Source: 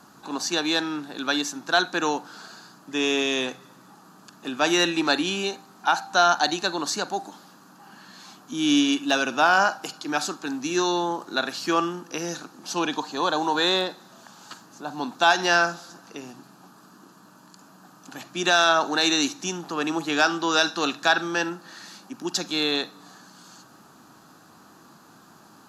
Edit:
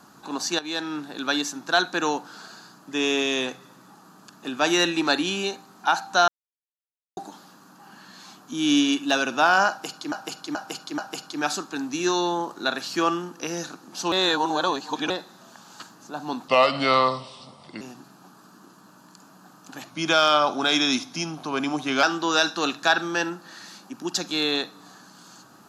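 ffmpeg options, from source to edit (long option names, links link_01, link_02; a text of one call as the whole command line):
ffmpeg -i in.wav -filter_complex "[0:a]asplit=13[link_01][link_02][link_03][link_04][link_05][link_06][link_07][link_08][link_09][link_10][link_11][link_12][link_13];[link_01]atrim=end=0.59,asetpts=PTS-STARTPTS,afade=type=out:start_time=0.586:duration=0.004:curve=hsin:silence=0.223872[link_14];[link_02]atrim=start=0.59:end=6.28,asetpts=PTS-STARTPTS,afade=type=in:duration=0.4:silence=0.223872,afade=type=out:start_time=5.686:duration=0.004:curve=hsin[link_15];[link_03]atrim=start=6.28:end=7.17,asetpts=PTS-STARTPTS,volume=0[link_16];[link_04]atrim=start=7.17:end=10.122,asetpts=PTS-STARTPTS,afade=type=in:duration=0.004:curve=hsin[link_17];[link_05]atrim=start=9.688:end=10.122[link_18];[link_06]atrim=start=9.688:end=10.122[link_19];[link_07]atrim=start=9.688:end=12.832[link_20];[link_08]atrim=start=12.828:end=13.812,asetpts=PTS-STARTPTS,areverse[link_21];[link_09]atrim=start=13.808:end=15.194[link_22];[link_10]atrim=start=15.19:end=16.2,asetpts=PTS-STARTPTS,asetrate=33516,aresample=44100[link_23];[link_11]atrim=start=16.196:end=18.294[link_24];[link_12]atrim=start=18.29:end=20.23,asetpts=PTS-STARTPTS,asetrate=40131,aresample=44100,atrim=end_sample=94015,asetpts=PTS-STARTPTS[link_25];[link_13]atrim=start=20.226[link_26];[link_14][link_15][link_16][link_17]concat=n=4:v=0:a=1[link_27];[link_27][link_18]acrossfade=duration=0.004:curve1=hsin:curve2=hsin[link_28];[link_28][link_19]acrossfade=duration=0.004:curve1=hsin:curve2=hsin[link_29];[link_29][link_20]acrossfade=duration=0.004:curve1=hsin:curve2=hsin[link_30];[link_30][link_21]acrossfade=duration=0.004:curve1=hsin:curve2=hsin[link_31];[link_31][link_22]acrossfade=duration=0.004:curve1=hsin:curve2=hsin[link_32];[link_32][link_23]acrossfade=duration=0.004:curve1=hsin:curve2=hsin[link_33];[link_33][link_24]acrossfade=duration=0.004:curve1=hsin:curve2=hsin[link_34];[link_34][link_25]acrossfade=duration=0.004:curve1=hsin:curve2=hsin[link_35];[link_35][link_26]acrossfade=duration=0.004:curve1=hsin:curve2=hsin" out.wav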